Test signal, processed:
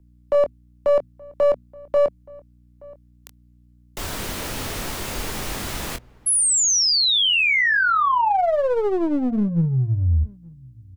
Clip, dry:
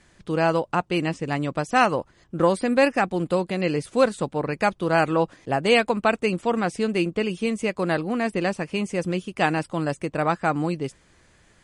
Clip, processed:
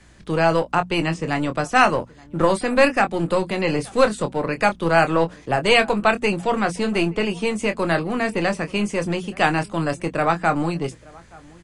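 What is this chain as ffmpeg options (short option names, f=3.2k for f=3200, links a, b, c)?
-filter_complex "[0:a]bandreject=f=60:t=h:w=6,bandreject=f=120:t=h:w=6,bandreject=f=180:t=h:w=6,bandreject=f=240:t=h:w=6,asplit=2[a][b];[b]adelay=24,volume=-9dB[c];[a][c]amix=inputs=2:normalize=0,aeval=exprs='val(0)+0.00158*(sin(2*PI*60*n/s)+sin(2*PI*2*60*n/s)/2+sin(2*PI*3*60*n/s)/3+sin(2*PI*4*60*n/s)/4+sin(2*PI*5*60*n/s)/5)':c=same,acrossover=split=180|610|5200[d][e][f][g];[e]aeval=exprs='clip(val(0),-1,0.0237)':c=same[h];[d][h][f][g]amix=inputs=4:normalize=0,asplit=2[i][j];[j]adelay=874.6,volume=-24dB,highshelf=f=4k:g=-19.7[k];[i][k]amix=inputs=2:normalize=0,volume=4dB"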